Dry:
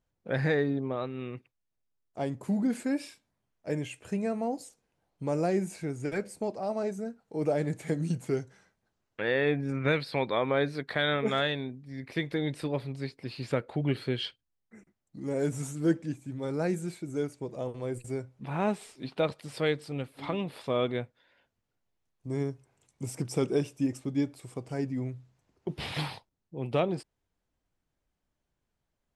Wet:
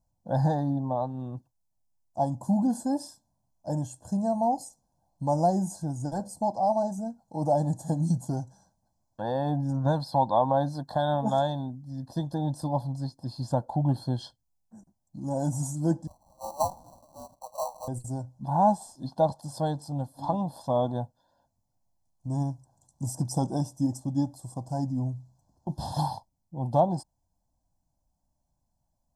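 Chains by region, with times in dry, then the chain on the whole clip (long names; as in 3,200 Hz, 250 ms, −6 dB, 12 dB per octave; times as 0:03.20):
0:16.07–0:17.88: Butterworth high-pass 560 Hz 72 dB per octave + spectral tilt −3.5 dB per octave + sample-rate reduction 1,700 Hz
whole clip: Chebyshev band-stop filter 880–5,600 Hz, order 2; dynamic equaliser 840 Hz, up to +7 dB, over −50 dBFS, Q 2.8; comb filter 1.2 ms, depth 93%; level +2 dB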